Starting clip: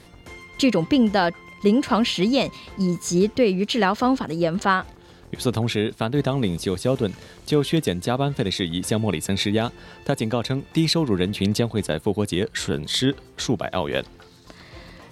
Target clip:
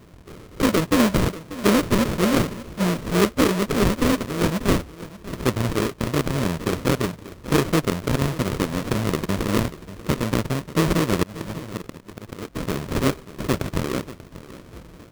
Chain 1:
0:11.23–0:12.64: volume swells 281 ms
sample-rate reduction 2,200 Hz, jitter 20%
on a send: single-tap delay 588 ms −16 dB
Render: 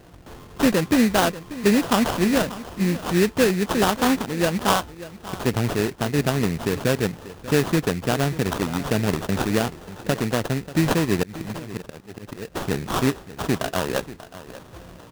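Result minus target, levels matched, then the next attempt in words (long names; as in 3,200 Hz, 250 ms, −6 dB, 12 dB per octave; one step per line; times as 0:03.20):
sample-rate reduction: distortion −11 dB
0:11.23–0:12.64: volume swells 281 ms
sample-rate reduction 800 Hz, jitter 20%
on a send: single-tap delay 588 ms −16 dB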